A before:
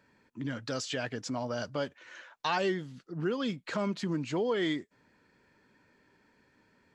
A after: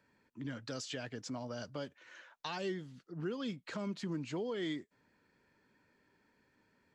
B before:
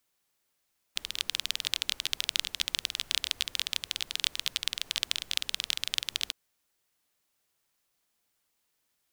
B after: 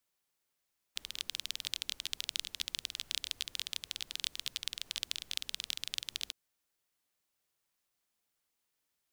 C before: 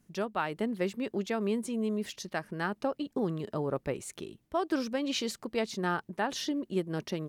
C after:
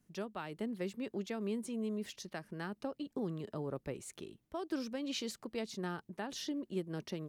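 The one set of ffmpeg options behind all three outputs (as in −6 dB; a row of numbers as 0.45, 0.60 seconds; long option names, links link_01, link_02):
-filter_complex "[0:a]acrossover=split=410|3000[link_01][link_02][link_03];[link_02]acompressor=threshold=-40dB:ratio=2[link_04];[link_01][link_04][link_03]amix=inputs=3:normalize=0,volume=-6dB"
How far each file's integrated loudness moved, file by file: −7.5, −7.0, −7.5 LU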